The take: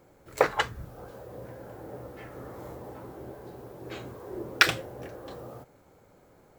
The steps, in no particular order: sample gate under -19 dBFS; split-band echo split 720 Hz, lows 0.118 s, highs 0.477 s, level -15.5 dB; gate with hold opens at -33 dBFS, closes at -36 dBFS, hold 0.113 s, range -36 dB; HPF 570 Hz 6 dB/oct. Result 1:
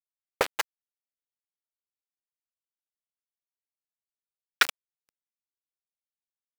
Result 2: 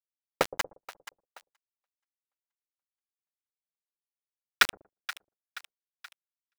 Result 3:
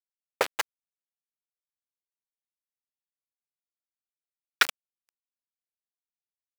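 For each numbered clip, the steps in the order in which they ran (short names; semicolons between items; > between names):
split-band echo > sample gate > HPF > gate with hold; HPF > sample gate > split-band echo > gate with hold; split-band echo > sample gate > gate with hold > HPF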